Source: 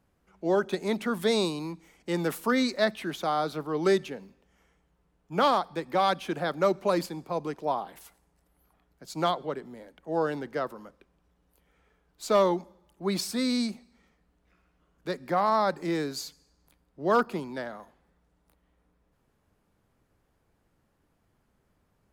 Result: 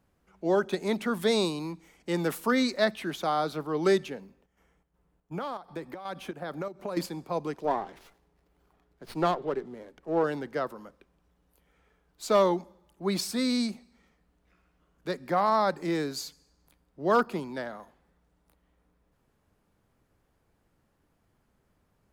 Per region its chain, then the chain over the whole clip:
4.20–6.97 s: peaking EQ 4.6 kHz -5 dB 2.2 oct + compression 10:1, threshold -30 dBFS + square tremolo 2.7 Hz, depth 60%, duty 70%
7.64–10.24 s: low-pass that closes with the level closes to 2.8 kHz, closed at -25 dBFS + peaking EQ 390 Hz +7 dB 0.37 oct + sliding maximum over 5 samples
whole clip: none

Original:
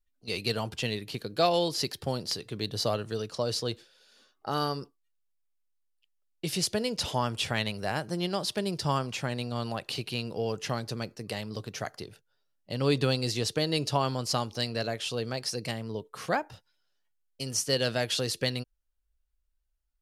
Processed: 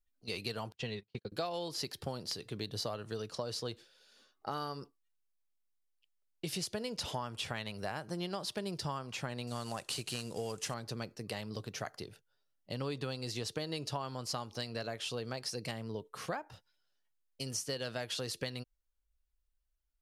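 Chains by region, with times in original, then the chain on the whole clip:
0.72–1.32 s: distance through air 84 m + comb of notches 300 Hz + gate -38 dBFS, range -35 dB
9.47–10.74 s: CVSD coder 64 kbps + peaking EQ 8.2 kHz +11.5 dB 1.2 oct
whole clip: dynamic bell 1.1 kHz, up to +4 dB, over -41 dBFS, Q 1.1; compression, threshold -31 dBFS; trim -3.5 dB

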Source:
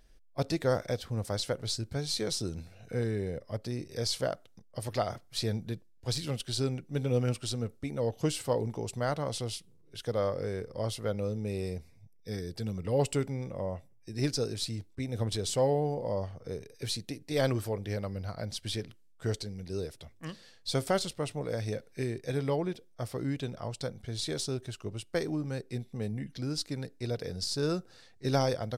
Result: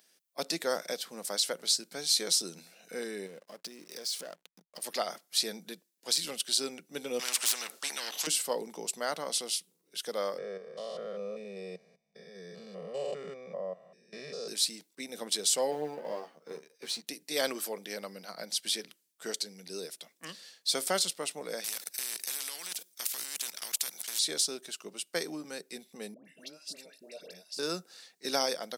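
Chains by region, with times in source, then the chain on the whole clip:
3.26–4.84 s: waveshaping leveller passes 1 + compression 3:1, threshold -41 dBFS + hysteresis with a dead band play -53 dBFS
7.19–8.27 s: overdrive pedal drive 15 dB, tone 2.9 kHz, clips at -16.5 dBFS + spectrum-flattening compressor 4:1
10.38–14.48 s: spectrogram pixelated in time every 200 ms + tape spacing loss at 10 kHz 26 dB + comb 1.7 ms, depth 95%
15.71–17.07 s: companding laws mixed up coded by A + low-pass 2.2 kHz 6 dB/octave + doubling 13 ms -4 dB
21.64–24.19 s: treble shelf 3.2 kHz +10 dB + level held to a coarse grid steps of 19 dB + spectrum-flattening compressor 4:1
26.14–27.59 s: compression 16:1, threshold -43 dBFS + small resonant body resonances 610/2700 Hz, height 16 dB, ringing for 40 ms + phase dispersion highs, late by 115 ms, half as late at 1.1 kHz
whole clip: elliptic high-pass 170 Hz, stop band 40 dB; tilt EQ +3.5 dB/octave

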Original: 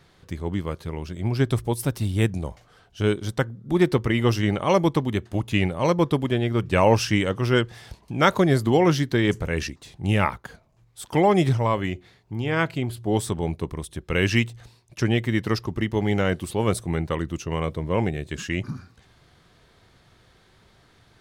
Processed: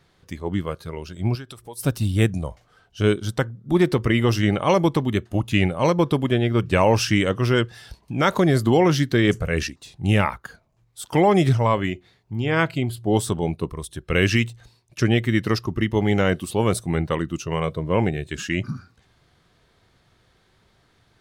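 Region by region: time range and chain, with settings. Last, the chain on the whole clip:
1.35–1.84 s: compression 4:1, threshold -30 dBFS + bass shelf 220 Hz -10.5 dB
whole clip: spectral noise reduction 7 dB; loudness maximiser +9 dB; trim -6 dB

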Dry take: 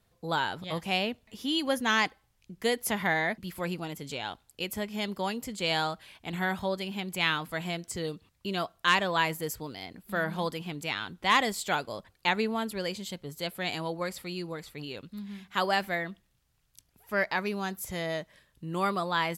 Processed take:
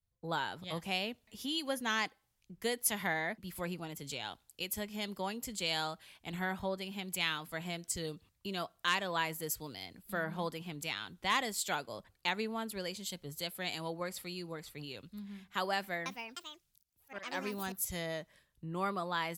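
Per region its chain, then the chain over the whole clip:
15.75–17.97 s: de-esser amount 30% + slow attack 263 ms + ever faster or slower copies 307 ms, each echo +5 st, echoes 2, each echo -6 dB
whole clip: treble shelf 4.6 kHz +6 dB; compression 2:1, threshold -39 dBFS; three bands expanded up and down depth 70%

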